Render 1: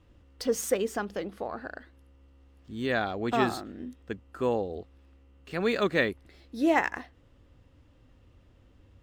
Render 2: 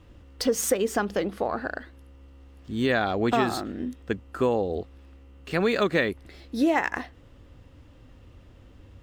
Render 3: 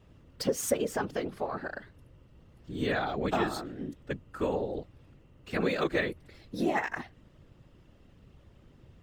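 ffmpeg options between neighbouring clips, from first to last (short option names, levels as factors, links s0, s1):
-af "acompressor=threshold=0.0447:ratio=6,volume=2.51"
-af "afftfilt=real='hypot(re,im)*cos(2*PI*random(0))':imag='hypot(re,im)*sin(2*PI*random(1))':win_size=512:overlap=0.75"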